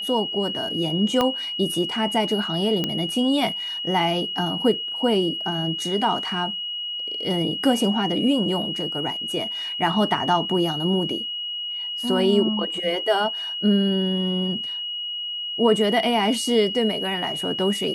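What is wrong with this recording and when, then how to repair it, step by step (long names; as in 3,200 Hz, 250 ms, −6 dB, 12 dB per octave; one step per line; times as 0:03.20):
whistle 2,900 Hz −27 dBFS
0:01.21: click −8 dBFS
0:02.84: click −10 dBFS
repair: click removal
notch filter 2,900 Hz, Q 30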